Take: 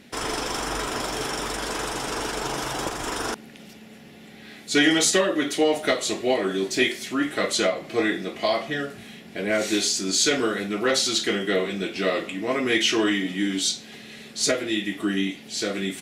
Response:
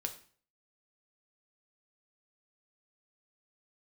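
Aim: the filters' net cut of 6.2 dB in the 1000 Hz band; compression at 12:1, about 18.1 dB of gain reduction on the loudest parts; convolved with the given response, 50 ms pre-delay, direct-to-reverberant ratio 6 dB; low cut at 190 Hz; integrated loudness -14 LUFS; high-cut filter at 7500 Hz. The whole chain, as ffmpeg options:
-filter_complex "[0:a]highpass=190,lowpass=7.5k,equalizer=f=1k:t=o:g=-9,acompressor=threshold=-35dB:ratio=12,asplit=2[a][b];[1:a]atrim=start_sample=2205,adelay=50[c];[b][c]afir=irnorm=-1:irlink=0,volume=-6dB[d];[a][d]amix=inputs=2:normalize=0,volume=23.5dB"

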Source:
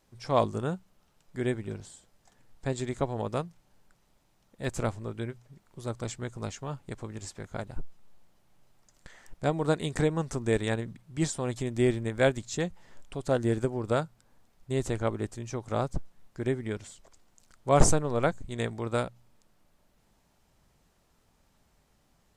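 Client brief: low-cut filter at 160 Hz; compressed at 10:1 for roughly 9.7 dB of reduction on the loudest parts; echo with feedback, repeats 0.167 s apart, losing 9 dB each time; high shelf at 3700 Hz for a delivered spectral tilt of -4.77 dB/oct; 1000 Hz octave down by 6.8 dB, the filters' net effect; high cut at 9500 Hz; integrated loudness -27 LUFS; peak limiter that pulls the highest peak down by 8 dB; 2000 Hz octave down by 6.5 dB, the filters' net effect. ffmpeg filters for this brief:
-af "highpass=160,lowpass=9.5k,equalizer=f=1k:t=o:g=-9,equalizer=f=2k:t=o:g=-6.5,highshelf=f=3.7k:g=5.5,acompressor=threshold=-30dB:ratio=10,alimiter=level_in=3.5dB:limit=-24dB:level=0:latency=1,volume=-3.5dB,aecho=1:1:167|334|501|668:0.355|0.124|0.0435|0.0152,volume=13.5dB"

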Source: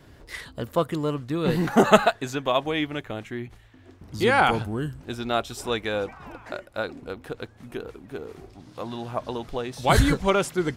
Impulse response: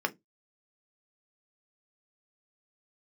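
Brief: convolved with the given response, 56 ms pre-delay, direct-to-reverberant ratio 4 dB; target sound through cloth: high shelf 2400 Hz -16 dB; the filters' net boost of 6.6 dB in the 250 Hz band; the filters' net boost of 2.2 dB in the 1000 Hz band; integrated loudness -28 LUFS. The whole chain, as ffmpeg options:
-filter_complex "[0:a]equalizer=f=250:t=o:g=8.5,equalizer=f=1k:t=o:g=5.5,asplit=2[a][b];[1:a]atrim=start_sample=2205,adelay=56[c];[b][c]afir=irnorm=-1:irlink=0,volume=-12dB[d];[a][d]amix=inputs=2:normalize=0,highshelf=f=2.4k:g=-16,volume=-7.5dB"

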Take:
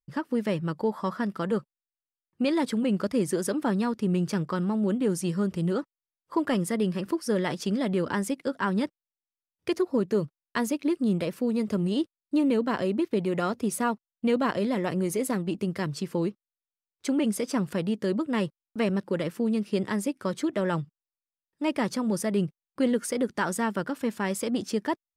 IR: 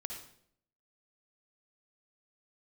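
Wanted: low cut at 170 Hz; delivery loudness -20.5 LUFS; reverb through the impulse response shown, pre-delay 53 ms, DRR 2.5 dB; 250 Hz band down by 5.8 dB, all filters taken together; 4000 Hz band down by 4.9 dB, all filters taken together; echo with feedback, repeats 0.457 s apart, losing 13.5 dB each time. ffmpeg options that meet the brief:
-filter_complex "[0:a]highpass=170,equalizer=f=250:t=o:g=-6,equalizer=f=4k:t=o:g=-7,aecho=1:1:457|914:0.211|0.0444,asplit=2[a][b];[1:a]atrim=start_sample=2205,adelay=53[c];[b][c]afir=irnorm=-1:irlink=0,volume=-1dB[d];[a][d]amix=inputs=2:normalize=0,volume=9dB"

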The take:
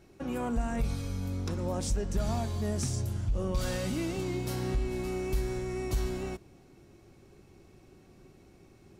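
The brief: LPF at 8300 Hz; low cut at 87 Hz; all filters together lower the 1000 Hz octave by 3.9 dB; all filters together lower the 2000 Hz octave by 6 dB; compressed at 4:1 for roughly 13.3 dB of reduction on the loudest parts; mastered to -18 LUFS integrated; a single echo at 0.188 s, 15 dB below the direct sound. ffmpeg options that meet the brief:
-af "highpass=87,lowpass=8.3k,equalizer=f=1k:t=o:g=-4.5,equalizer=f=2k:t=o:g=-6.5,acompressor=threshold=-46dB:ratio=4,aecho=1:1:188:0.178,volume=30dB"

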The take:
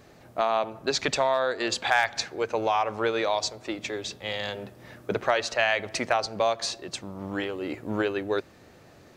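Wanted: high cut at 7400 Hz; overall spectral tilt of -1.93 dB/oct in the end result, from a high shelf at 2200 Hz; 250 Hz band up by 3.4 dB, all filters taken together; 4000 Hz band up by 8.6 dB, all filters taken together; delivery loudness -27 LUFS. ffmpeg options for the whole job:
-af "lowpass=7.4k,equalizer=f=250:t=o:g=4.5,highshelf=f=2.2k:g=8.5,equalizer=f=4k:t=o:g=3,volume=-3.5dB"

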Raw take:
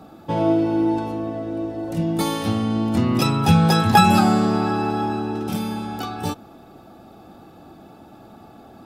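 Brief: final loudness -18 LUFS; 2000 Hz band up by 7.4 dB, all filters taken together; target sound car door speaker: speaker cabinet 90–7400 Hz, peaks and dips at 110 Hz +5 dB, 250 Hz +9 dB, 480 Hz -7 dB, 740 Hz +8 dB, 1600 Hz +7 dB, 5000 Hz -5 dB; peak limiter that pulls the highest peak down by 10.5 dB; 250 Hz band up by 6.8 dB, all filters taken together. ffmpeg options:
-af "equalizer=f=250:t=o:g=4,equalizer=f=2k:t=o:g=3.5,alimiter=limit=-12dB:level=0:latency=1,highpass=90,equalizer=f=110:t=q:w=4:g=5,equalizer=f=250:t=q:w=4:g=9,equalizer=f=480:t=q:w=4:g=-7,equalizer=f=740:t=q:w=4:g=8,equalizer=f=1.6k:t=q:w=4:g=7,equalizer=f=5k:t=q:w=4:g=-5,lowpass=f=7.4k:w=0.5412,lowpass=f=7.4k:w=1.3066,volume=0.5dB"

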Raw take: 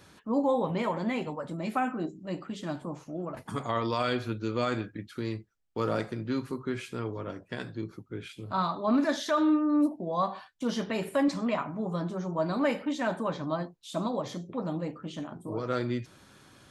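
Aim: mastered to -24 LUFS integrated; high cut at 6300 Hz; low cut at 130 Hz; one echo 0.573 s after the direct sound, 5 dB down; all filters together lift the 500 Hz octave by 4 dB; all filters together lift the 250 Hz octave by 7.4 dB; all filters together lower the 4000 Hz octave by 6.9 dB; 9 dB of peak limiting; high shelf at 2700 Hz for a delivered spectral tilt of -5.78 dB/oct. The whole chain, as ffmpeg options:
-af "highpass=130,lowpass=6.3k,equalizer=f=250:t=o:g=8.5,equalizer=f=500:t=o:g=3,highshelf=f=2.7k:g=-4,equalizer=f=4k:t=o:g=-5,alimiter=limit=-18dB:level=0:latency=1,aecho=1:1:573:0.562,volume=3.5dB"

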